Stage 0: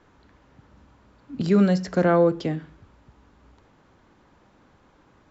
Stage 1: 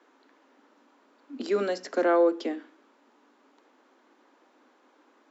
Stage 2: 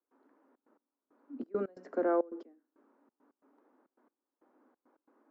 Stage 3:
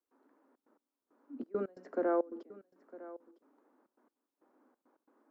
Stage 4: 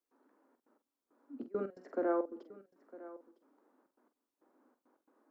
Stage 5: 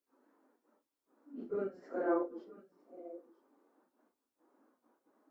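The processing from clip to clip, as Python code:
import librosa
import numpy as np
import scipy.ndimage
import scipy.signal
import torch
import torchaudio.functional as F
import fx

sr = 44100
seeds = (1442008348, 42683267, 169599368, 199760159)

y1 = scipy.signal.sosfilt(scipy.signal.butter(12, 240.0, 'highpass', fs=sr, output='sos'), x)
y1 = y1 * librosa.db_to_amplitude(-2.5)
y2 = fx.curve_eq(y1, sr, hz=(290.0, 1400.0, 3500.0), db=(0, -6, -24))
y2 = fx.step_gate(y2, sr, bpm=136, pattern='.xxxx.x...xxx.x', floor_db=-24.0, edge_ms=4.5)
y2 = y2 * librosa.db_to_amplitude(-4.0)
y3 = y2 + 10.0 ** (-17.5 / 20.0) * np.pad(y2, (int(956 * sr / 1000.0), 0))[:len(y2)]
y3 = y3 * librosa.db_to_amplitude(-1.5)
y4 = fx.doubler(y3, sr, ms=46.0, db=-10.0)
y4 = y4 * librosa.db_to_amplitude(-1.5)
y5 = fx.phase_scramble(y4, sr, seeds[0], window_ms=100)
y5 = fx.spec_repair(y5, sr, seeds[1], start_s=2.75, length_s=0.93, low_hz=830.0, high_hz=2000.0, source='after')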